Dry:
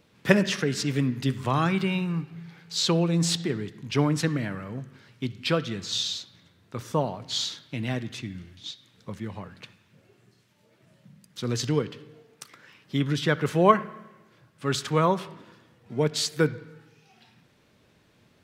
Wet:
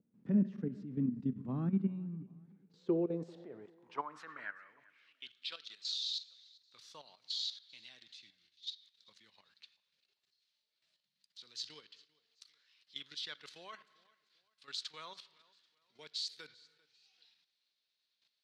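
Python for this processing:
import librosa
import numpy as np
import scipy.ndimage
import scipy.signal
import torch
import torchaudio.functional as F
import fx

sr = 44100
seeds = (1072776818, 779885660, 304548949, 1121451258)

y = fx.bass_treble(x, sr, bass_db=-10, treble_db=2, at=(3.64, 5.88), fade=0.02)
y = fx.level_steps(y, sr, step_db=12)
y = fx.filter_sweep_bandpass(y, sr, from_hz=220.0, to_hz=4200.0, start_s=2.37, end_s=5.6, q=3.8)
y = fx.echo_feedback(y, sr, ms=393, feedback_pct=36, wet_db=-24.0)
y = y * librosa.db_to_amplitude(1.0)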